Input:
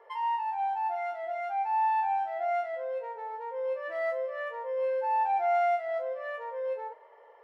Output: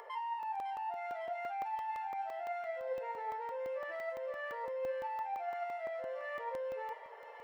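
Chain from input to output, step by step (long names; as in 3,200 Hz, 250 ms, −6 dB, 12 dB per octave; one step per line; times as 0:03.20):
low-shelf EQ 290 Hz −9 dB
downward compressor, threshold −37 dBFS, peak gain reduction 12 dB
brickwall limiter −38.5 dBFS, peak gain reduction 7 dB
upward compression, threshold −52 dBFS
flanger 0.72 Hz, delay 0.9 ms, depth 5 ms, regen +78%
on a send: delay with a high-pass on its return 555 ms, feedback 70%, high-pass 2,400 Hz, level −4.5 dB
on the sum: regular buffer underruns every 0.17 s, samples 64, zero, from 0:00.43
level +8.5 dB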